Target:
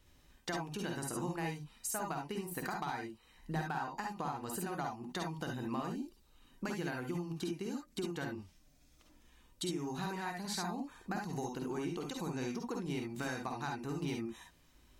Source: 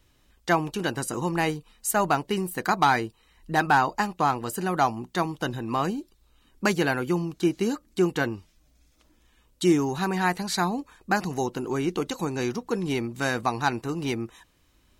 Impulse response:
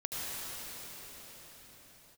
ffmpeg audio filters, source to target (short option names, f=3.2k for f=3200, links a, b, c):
-filter_complex "[0:a]acompressor=threshold=-33dB:ratio=12[a];[1:a]atrim=start_sample=2205,afade=t=out:st=0.16:d=0.01,atrim=end_sample=7497,asetrate=66150,aresample=44100[b];[a][b]afir=irnorm=-1:irlink=0,volume=3dB"